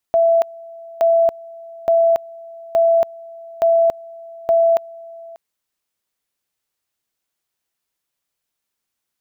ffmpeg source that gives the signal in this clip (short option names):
-f lavfi -i "aevalsrc='pow(10,(-10.5-23*gte(mod(t,0.87),0.28))/20)*sin(2*PI*667*t)':d=5.22:s=44100"